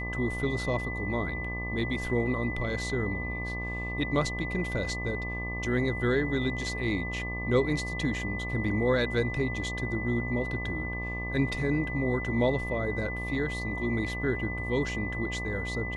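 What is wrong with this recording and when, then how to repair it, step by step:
buzz 60 Hz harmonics 20 -36 dBFS
tone 2000 Hz -35 dBFS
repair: de-hum 60 Hz, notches 20; notch 2000 Hz, Q 30

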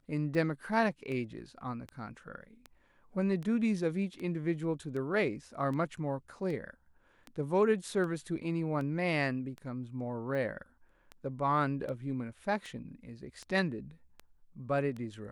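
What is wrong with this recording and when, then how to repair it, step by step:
tick 78 rpm -29 dBFS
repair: de-click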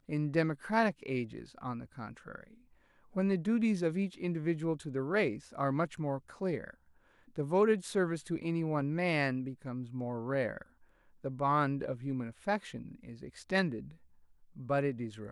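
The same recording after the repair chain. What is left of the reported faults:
none

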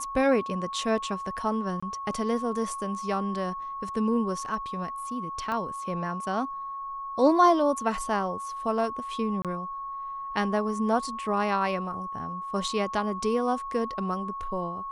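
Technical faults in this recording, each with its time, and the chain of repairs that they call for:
tone 1100 Hz -33 dBFS
1.8–1.82 gap 25 ms
5.52 pop -20 dBFS
9.42–9.45 gap 27 ms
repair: de-click; notch 1100 Hz, Q 30; interpolate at 1.8, 25 ms; interpolate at 9.42, 27 ms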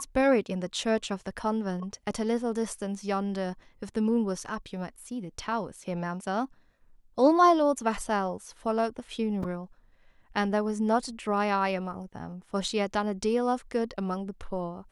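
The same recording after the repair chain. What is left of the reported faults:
5.52 pop

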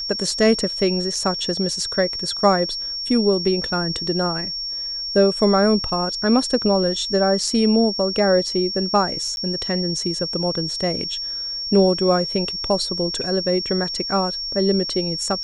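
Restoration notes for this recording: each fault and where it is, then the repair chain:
tone 5500 Hz -25 dBFS
9.36–9.37 gap 11 ms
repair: notch 5500 Hz, Q 30; interpolate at 9.36, 11 ms

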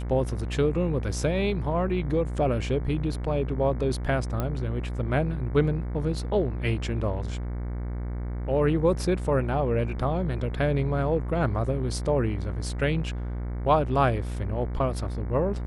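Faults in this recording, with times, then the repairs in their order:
buzz 60 Hz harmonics 38 -31 dBFS
4.4 pop -15 dBFS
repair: de-click; de-hum 60 Hz, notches 38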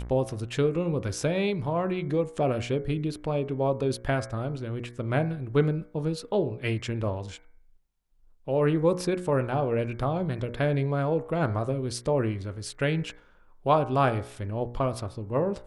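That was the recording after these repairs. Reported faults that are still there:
none

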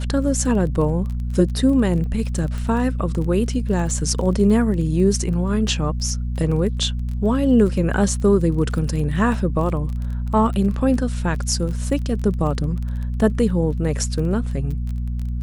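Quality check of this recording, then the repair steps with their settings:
crackle 22/s -28 dBFS
hum 60 Hz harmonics 4 -24 dBFS
2.58 pop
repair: de-click; de-hum 60 Hz, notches 4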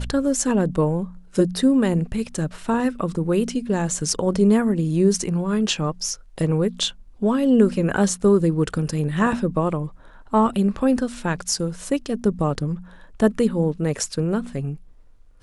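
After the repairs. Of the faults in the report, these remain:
none

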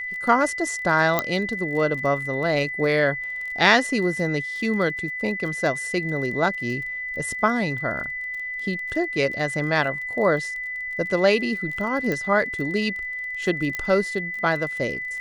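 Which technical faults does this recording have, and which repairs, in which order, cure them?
crackle 23/s -32 dBFS
tone 2000 Hz -28 dBFS
1.19 pop -5 dBFS
12.12 pop -13 dBFS
13.75 pop -13 dBFS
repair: de-click; notch 2000 Hz, Q 30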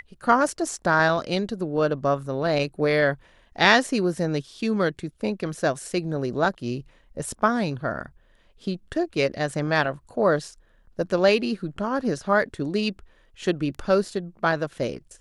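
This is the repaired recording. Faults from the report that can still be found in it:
13.75 pop

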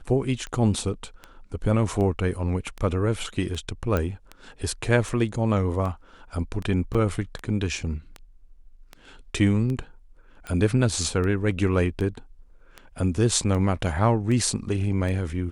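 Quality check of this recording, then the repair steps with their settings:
tick 78 rpm -21 dBFS
3.97 pop -12 dBFS
6.94–6.95 gap 6.4 ms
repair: de-click; interpolate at 6.94, 6.4 ms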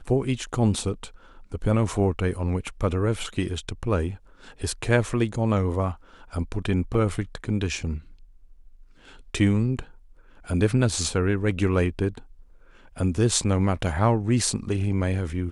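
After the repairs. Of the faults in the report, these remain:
none

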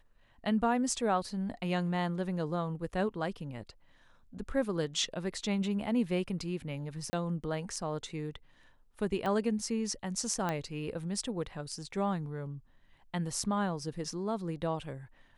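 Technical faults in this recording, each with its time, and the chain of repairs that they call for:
7.1–7.13 gap 30 ms
9.26 pop -22 dBFS
10.49 pop -19 dBFS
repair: de-click; interpolate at 7.1, 30 ms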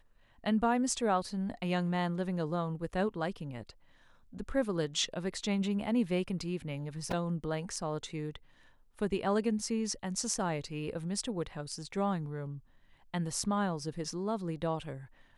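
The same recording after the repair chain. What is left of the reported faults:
9.26 pop

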